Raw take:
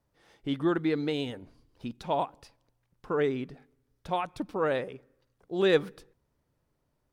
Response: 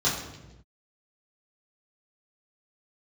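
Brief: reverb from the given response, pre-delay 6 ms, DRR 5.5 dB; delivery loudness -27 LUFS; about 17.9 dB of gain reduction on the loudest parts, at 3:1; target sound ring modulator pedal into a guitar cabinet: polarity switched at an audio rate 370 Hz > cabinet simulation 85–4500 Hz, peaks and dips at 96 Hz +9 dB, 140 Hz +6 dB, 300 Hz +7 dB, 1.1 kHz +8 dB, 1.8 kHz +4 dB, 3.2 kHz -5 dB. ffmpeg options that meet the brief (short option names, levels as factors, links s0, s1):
-filter_complex "[0:a]acompressor=threshold=0.00708:ratio=3,asplit=2[s0][s1];[1:a]atrim=start_sample=2205,adelay=6[s2];[s1][s2]afir=irnorm=-1:irlink=0,volume=0.126[s3];[s0][s3]amix=inputs=2:normalize=0,aeval=exprs='val(0)*sgn(sin(2*PI*370*n/s))':c=same,highpass=85,equalizer=f=96:t=q:w=4:g=9,equalizer=f=140:t=q:w=4:g=6,equalizer=f=300:t=q:w=4:g=7,equalizer=f=1100:t=q:w=4:g=8,equalizer=f=1800:t=q:w=4:g=4,equalizer=f=3200:t=q:w=4:g=-5,lowpass=f=4500:w=0.5412,lowpass=f=4500:w=1.3066,volume=4.73"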